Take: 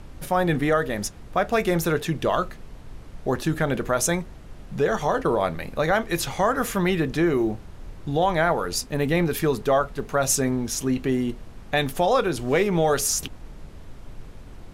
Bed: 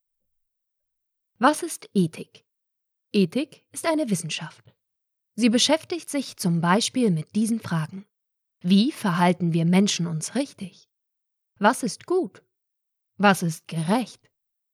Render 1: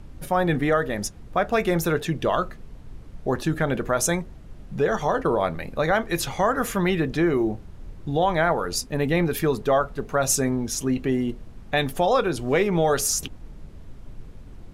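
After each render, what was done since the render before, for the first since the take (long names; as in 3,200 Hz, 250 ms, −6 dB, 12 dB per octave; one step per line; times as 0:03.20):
broadband denoise 6 dB, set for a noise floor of −43 dBFS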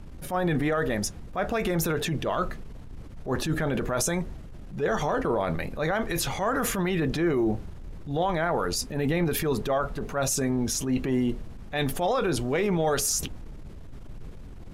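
transient designer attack −10 dB, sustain +4 dB
brickwall limiter −17 dBFS, peak gain reduction 7 dB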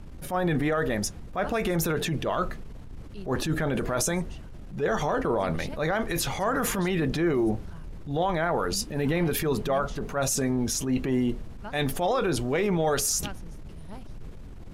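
mix in bed −23 dB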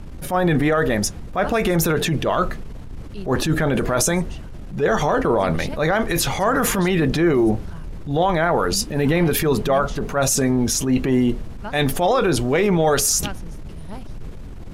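level +7.5 dB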